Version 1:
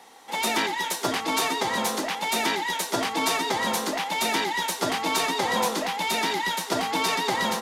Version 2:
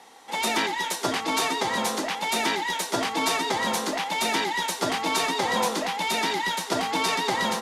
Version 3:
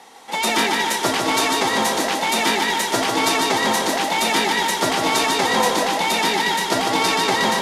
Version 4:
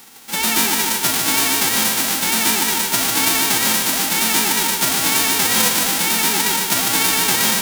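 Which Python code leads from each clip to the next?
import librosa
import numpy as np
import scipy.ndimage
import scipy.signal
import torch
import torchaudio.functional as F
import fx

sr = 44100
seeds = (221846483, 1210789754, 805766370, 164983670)

y1 = scipy.signal.sosfilt(scipy.signal.butter(2, 12000.0, 'lowpass', fs=sr, output='sos'), x)
y2 = fx.echo_feedback(y1, sr, ms=149, feedback_pct=54, wet_db=-4.0)
y2 = y2 * librosa.db_to_amplitude(5.0)
y3 = fx.envelope_flatten(y2, sr, power=0.1)
y3 = y3 * librosa.db_to_amplitude(2.0)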